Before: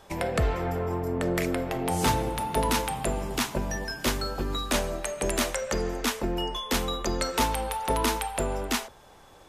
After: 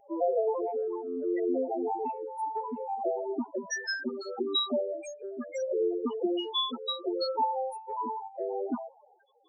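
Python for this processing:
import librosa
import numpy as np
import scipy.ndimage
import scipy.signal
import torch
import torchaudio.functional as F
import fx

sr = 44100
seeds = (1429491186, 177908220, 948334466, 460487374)

y = scipy.signal.sosfilt(scipy.signal.butter(2, 320.0, 'highpass', fs=sr, output='sos'), x)
y = fx.rider(y, sr, range_db=10, speed_s=0.5)
y = fx.spec_topn(y, sr, count=4)
y = 10.0 ** (-14.5 / 20.0) * np.tanh(y / 10.0 ** (-14.5 / 20.0))
y = fx.phaser_stages(y, sr, stages=6, low_hz=590.0, high_hz=2100.0, hz=0.71, feedback_pct=25)
y = y * 10.0 ** (6.5 / 20.0)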